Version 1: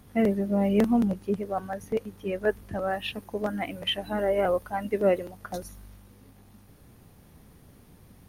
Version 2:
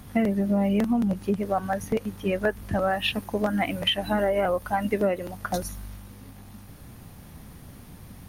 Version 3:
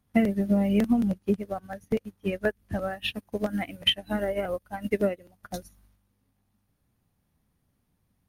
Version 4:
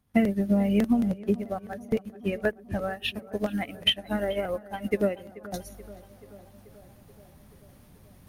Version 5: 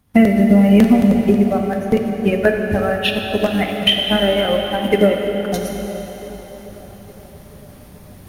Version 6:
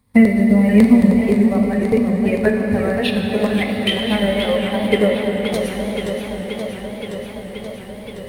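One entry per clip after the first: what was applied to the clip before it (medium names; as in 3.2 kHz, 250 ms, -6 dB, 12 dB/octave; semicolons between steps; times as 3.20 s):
peaking EQ 420 Hz -5.5 dB 0.76 oct; compression 12:1, threshold -29 dBFS, peak gain reduction 10.5 dB; trim +9 dB
dynamic bell 970 Hz, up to -7 dB, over -41 dBFS, Q 1.5; upward expansion 2.5:1, over -41 dBFS; trim +3.5 dB
reverse; upward compressor, threshold -37 dBFS; reverse; tape echo 432 ms, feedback 74%, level -17.5 dB, low-pass 2.2 kHz
plate-style reverb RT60 4 s, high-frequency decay 1×, DRR 2.5 dB; loudness maximiser +12 dB; trim -1 dB
rippled EQ curve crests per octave 0.96, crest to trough 9 dB; modulated delay 525 ms, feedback 76%, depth 168 cents, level -8 dB; trim -3 dB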